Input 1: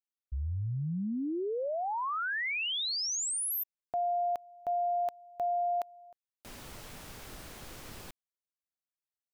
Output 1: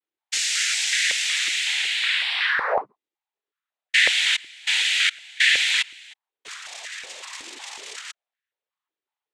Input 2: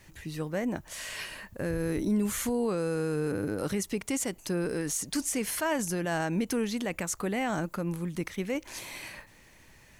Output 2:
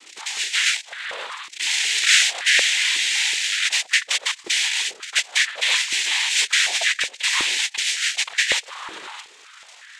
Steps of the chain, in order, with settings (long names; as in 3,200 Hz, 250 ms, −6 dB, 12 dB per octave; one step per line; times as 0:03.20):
dynamic equaliser 2,300 Hz, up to −4 dB, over −48 dBFS, Q 1.6
voice inversion scrambler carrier 4,000 Hz
cochlear-implant simulation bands 6
high-pass on a step sequencer 5.4 Hz 330–1,700 Hz
level +8.5 dB